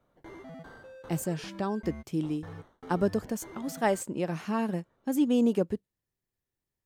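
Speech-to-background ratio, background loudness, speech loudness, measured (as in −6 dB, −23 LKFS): 17.0 dB, −47.5 LKFS, −30.5 LKFS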